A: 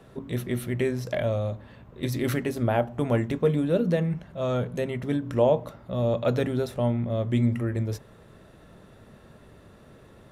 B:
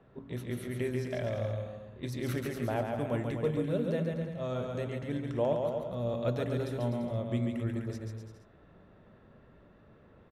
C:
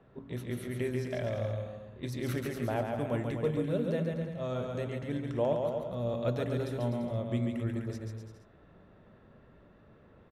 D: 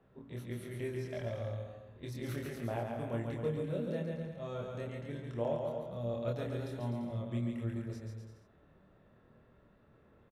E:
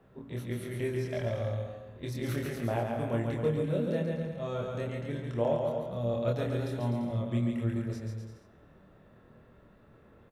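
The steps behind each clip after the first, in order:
low-pass opened by the level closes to 2300 Hz, open at -22.5 dBFS; bouncing-ball echo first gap 0.14 s, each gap 0.8×, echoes 5; gain -9 dB
nothing audible
doubler 26 ms -2.5 dB; gain -7.5 dB
reverb RT60 1.6 s, pre-delay 36 ms, DRR 19.5 dB; gain +6 dB

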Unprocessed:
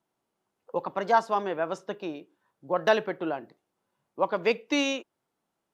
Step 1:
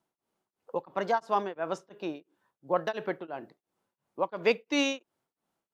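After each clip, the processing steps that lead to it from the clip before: beating tremolo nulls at 2.9 Hz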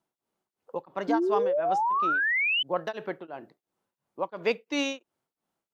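painted sound rise, 1.08–2.63, 280–3100 Hz -24 dBFS; gain -1.5 dB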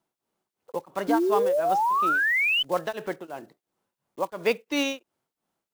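block floating point 5-bit; gain +2.5 dB

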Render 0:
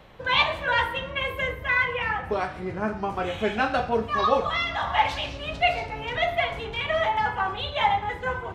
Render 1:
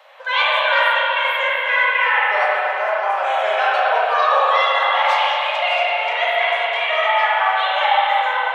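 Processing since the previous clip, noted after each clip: elliptic high-pass 570 Hz, stop band 50 dB; in parallel at +2.5 dB: limiter -20.5 dBFS, peak gain reduction 11.5 dB; on the sum: spring tank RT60 3.5 s, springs 34/54/59 ms, chirp 70 ms, DRR -7 dB; gain -3 dB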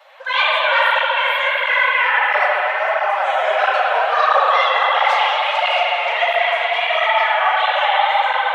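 HPF 430 Hz 24 dB/oct; diffused feedback echo 0.477 s, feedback 49%, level -9.5 dB; tape flanging out of phase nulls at 1.5 Hz, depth 7.9 ms; gain +3.5 dB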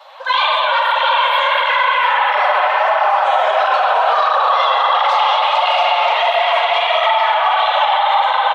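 ten-band EQ 1000 Hz +9 dB, 2000 Hz -6 dB, 4000 Hz +8 dB; limiter -9 dBFS, peak gain reduction 11 dB; echo 0.696 s -8 dB; gain +2.5 dB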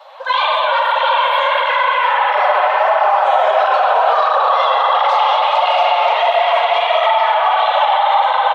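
bell 440 Hz +6.5 dB 2.4 oct; gain -3 dB

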